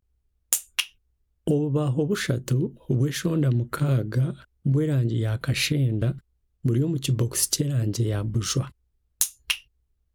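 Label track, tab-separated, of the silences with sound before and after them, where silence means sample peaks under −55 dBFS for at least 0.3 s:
0.950000	1.470000	silence
6.210000	6.630000	silence
8.720000	9.200000	silence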